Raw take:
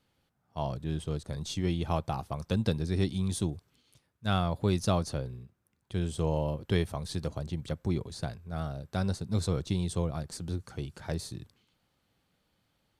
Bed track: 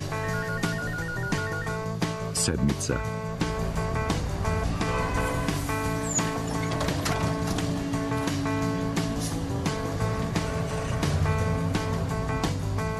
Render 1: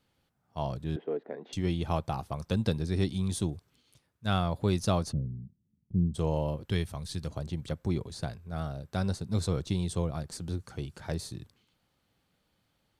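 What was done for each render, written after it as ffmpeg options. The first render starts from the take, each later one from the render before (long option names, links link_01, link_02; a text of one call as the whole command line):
ffmpeg -i in.wav -filter_complex "[0:a]asettb=1/sr,asplit=3[link_01][link_02][link_03];[link_01]atrim=end=0.964[link_04];[link_02]atrim=start=0.96:end=1.53,asetpts=PTS-STARTPTS,afade=type=in:duration=0.004:curve=qsin,afade=type=out:start_time=0.566:duration=0.004:curve=qsin,highpass=frequency=260:width=0.5412,highpass=frequency=260:width=1.3066,equalizer=frequency=260:width_type=q:width=4:gain=5,equalizer=frequency=430:width_type=q:width=4:gain=9,equalizer=frequency=710:width_type=q:width=4:gain=7,equalizer=frequency=1200:width_type=q:width=4:gain=-6,equalizer=frequency=1900:width_type=q:width=4:gain=4,lowpass=frequency=2100:width=0.5412,lowpass=frequency=2100:width=1.3066[link_05];[link_03]atrim=start=1.526[link_06];[link_04][link_05]acrossfade=duration=0.004:curve1=hsin:curve2=qsin[link_07];[link_07][link_06]acrossfade=duration=0.004:curve1=qsin:curve2=hsin,asplit=3[link_08][link_09][link_10];[link_08]afade=type=out:start_time=5.11:duration=0.02[link_11];[link_09]lowpass=frequency=200:width_type=q:width=2.4,afade=type=in:start_time=5.11:duration=0.02,afade=type=out:start_time=6.14:duration=0.02[link_12];[link_10]afade=type=in:start_time=6.14:duration=0.02[link_13];[link_11][link_12][link_13]amix=inputs=3:normalize=0,asettb=1/sr,asplit=3[link_14][link_15][link_16];[link_14]atrim=end=6.684[link_17];[link_15]atrim=start=6.68:end=7.31,asetpts=PTS-STARTPTS,afade=type=in:duration=0.004:curve=qsin,afade=type=out:start_time=0.626:duration=0.004:curve=qsin,equalizer=frequency=590:width=0.49:gain=-6.5[link_18];[link_16]atrim=start=7.306[link_19];[link_17][link_18]acrossfade=duration=0.004:curve1=hsin:curve2=qsin[link_20];[link_20][link_19]acrossfade=duration=0.004:curve1=qsin:curve2=hsin" out.wav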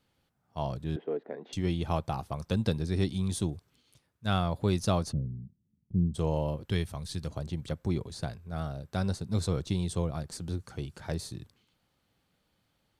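ffmpeg -i in.wav -af anull out.wav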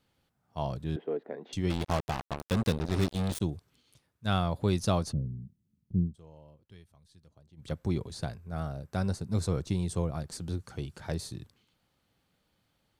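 ffmpeg -i in.wav -filter_complex "[0:a]asplit=3[link_01][link_02][link_03];[link_01]afade=type=out:start_time=1.69:duration=0.02[link_04];[link_02]acrusher=bits=4:mix=0:aa=0.5,afade=type=in:start_time=1.69:duration=0.02,afade=type=out:start_time=3.4:duration=0.02[link_05];[link_03]afade=type=in:start_time=3.4:duration=0.02[link_06];[link_04][link_05][link_06]amix=inputs=3:normalize=0,asettb=1/sr,asplit=3[link_07][link_08][link_09];[link_07]atrim=end=8.314[link_10];[link_08]atrim=start=8.31:end=10.2,asetpts=PTS-STARTPTS,afade=type=in:duration=0.004:curve=qsin,afade=type=out:start_time=1.886:duration=0.004:curve=qsin,equalizer=frequency=3500:width_type=o:width=0.61:gain=-5.5[link_11];[link_09]atrim=start=10.196[link_12];[link_10][link_11]acrossfade=duration=0.004:curve1=hsin:curve2=qsin[link_13];[link_13][link_12]acrossfade=duration=0.004:curve1=qsin:curve2=hsin,asplit=3[link_14][link_15][link_16];[link_14]atrim=end=6.16,asetpts=PTS-STARTPTS,afade=type=out:start_time=5.99:duration=0.17:silence=0.0668344[link_17];[link_15]atrim=start=6.16:end=7.56,asetpts=PTS-STARTPTS,volume=-23.5dB[link_18];[link_16]atrim=start=7.56,asetpts=PTS-STARTPTS,afade=type=in:duration=0.17:silence=0.0668344[link_19];[link_17][link_18][link_19]concat=n=3:v=0:a=1" out.wav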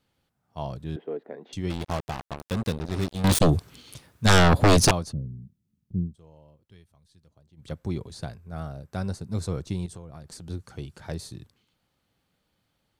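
ffmpeg -i in.wav -filter_complex "[0:a]asettb=1/sr,asplit=3[link_01][link_02][link_03];[link_01]atrim=end=3.244[link_04];[link_02]atrim=start=3.24:end=4.91,asetpts=PTS-STARTPTS,afade=type=in:duration=0.004:curve=qsin,afade=type=out:start_time=1.666:duration=0.004:curve=qsin,aeval=exprs='0.237*sin(PI/2*5.62*val(0)/0.237)':channel_layout=same[link_05];[link_03]atrim=start=4.906[link_06];[link_04][link_05]acrossfade=duration=0.004:curve1=hsin:curve2=qsin[link_07];[link_07][link_06]acrossfade=duration=0.004:curve1=qsin:curve2=hsin,asettb=1/sr,asplit=3[link_08][link_09][link_10];[link_08]atrim=end=9.864[link_11];[link_09]atrim=start=9.86:end=10.5,asetpts=PTS-STARTPTS,afade=type=in:duration=0.004:curve=qsin,afade=type=out:start_time=0.636:duration=0.004:curve=qsin,acompressor=threshold=-38dB:ratio=5:attack=3.2:release=140:knee=1:detection=peak[link_12];[link_10]atrim=start=10.496[link_13];[link_11][link_12]acrossfade=duration=0.004:curve1=hsin:curve2=qsin[link_14];[link_14][link_13]acrossfade=duration=0.004:curve1=qsin:curve2=hsin" out.wav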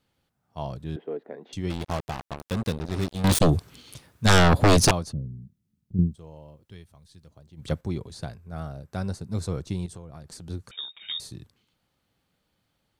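ffmpeg -i in.wav -filter_complex "[0:a]asettb=1/sr,asplit=3[link_01][link_02][link_03];[link_01]atrim=end=10.714[link_04];[link_02]atrim=start=10.71:end=11.2,asetpts=PTS-STARTPTS,afade=type=in:duration=0.004:curve=qsin,afade=type=out:start_time=0.486:duration=0.004:curve=qsin,lowpass=frequency=3200:width_type=q:width=0.5098,lowpass=frequency=3200:width_type=q:width=0.6013,lowpass=frequency=3200:width_type=q:width=0.9,lowpass=frequency=3200:width_type=q:width=2.563,afreqshift=-3800[link_05];[link_03]atrim=start=11.196[link_06];[link_04][link_05]acrossfade=duration=0.004:curve1=hsin:curve2=qsin[link_07];[link_07][link_06]acrossfade=duration=0.004:curve1=qsin:curve2=hsin,asplit=3[link_08][link_09][link_10];[link_08]atrim=end=5.992[link_11];[link_09]atrim=start=5.988:end=7.812,asetpts=PTS-STARTPTS,volume=7.5dB[link_12];[link_10]atrim=start=7.808[link_13];[link_11][link_12]acrossfade=duration=0.004:curve1=hsin:curve2=hsin[link_14];[link_14][link_13]acrossfade=duration=0.004:curve1=hsin:curve2=hsin" out.wav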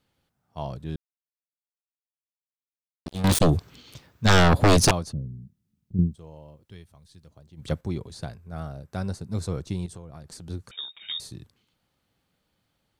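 ffmpeg -i in.wav -filter_complex "[0:a]asettb=1/sr,asplit=3[link_01][link_02][link_03];[link_01]atrim=end=3.574[link_04];[link_02]atrim=start=3.57:end=4.39,asetpts=PTS-STARTPTS,afade=type=in:duration=0.004:curve=qsin,afade=type=out:start_time=0.816:duration=0.004:curve=qsin,equalizer=frequency=10000:width=2.2:gain=-14.5[link_05];[link_03]atrim=start=4.386[link_06];[link_04][link_05]acrossfade=duration=0.004:curve1=hsin:curve2=qsin[link_07];[link_07][link_06]acrossfade=duration=0.004:curve1=qsin:curve2=hsin,asplit=3[link_08][link_09][link_10];[link_08]atrim=end=0.96,asetpts=PTS-STARTPTS,afade=type=out:start_time=0.956:duration=0.004:curve=hsin[link_11];[link_09]atrim=start=0.96:end=3.06,asetpts=PTS-STARTPTS,volume=0[link_12];[link_10]atrim=start=3.06,asetpts=PTS-STARTPTS,afade=type=in:duration=0.004:curve=hsin[link_13];[link_11][link_12][link_13]concat=n=3:v=0:a=1" out.wav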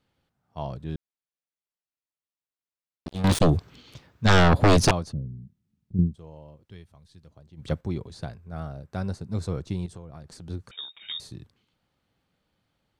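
ffmpeg -i in.wav -af "highshelf=frequency=7000:gain=-10.5" out.wav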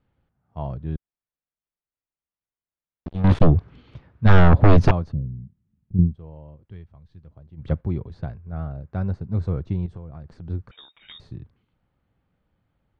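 ffmpeg -i in.wav -af "lowpass=2100,lowshelf=frequency=120:gain=11" out.wav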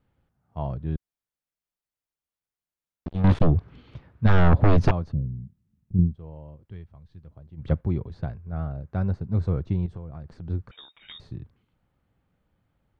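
ffmpeg -i in.wav -af "alimiter=limit=-9dB:level=0:latency=1:release=283" out.wav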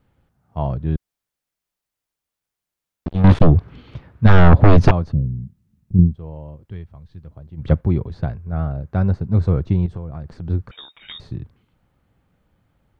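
ffmpeg -i in.wav -af "volume=7.5dB" out.wav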